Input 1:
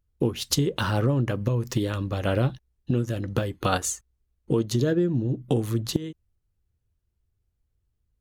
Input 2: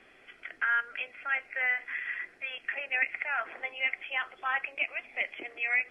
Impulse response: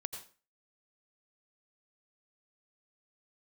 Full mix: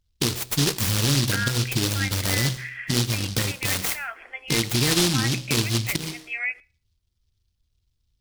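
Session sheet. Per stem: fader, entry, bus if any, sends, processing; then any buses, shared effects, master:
+1.5 dB, 0.00 s, send −13 dB, hum removal 63.11 Hz, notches 16; short delay modulated by noise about 4,100 Hz, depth 0.44 ms
−5.0 dB, 0.70 s, send −20 dB, high-shelf EQ 2,700 Hz +11.5 dB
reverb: on, RT60 0.40 s, pre-delay 78 ms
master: brickwall limiter −12.5 dBFS, peak gain reduction 7.5 dB

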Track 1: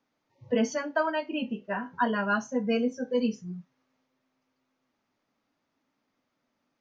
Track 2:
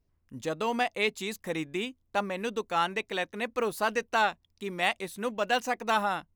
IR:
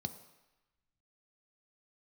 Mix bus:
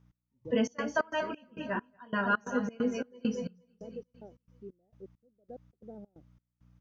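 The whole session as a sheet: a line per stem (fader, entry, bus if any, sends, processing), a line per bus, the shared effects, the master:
−0.5 dB, 0.00 s, send −11 dB, echo send −11 dB, mains hum 60 Hz, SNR 29 dB
−9.0 dB, 0.00 s, no send, no echo send, inverse Chebyshev low-pass filter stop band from 1,000 Hz, stop band 40 dB; gate pattern "xxx.xx.xx" 89 BPM −60 dB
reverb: on, RT60 1.0 s, pre-delay 3 ms
echo: repeating echo 233 ms, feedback 44%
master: low-shelf EQ 66 Hz −10.5 dB; gate pattern "x...xx.xx.xx..x" 134 BPM −24 dB

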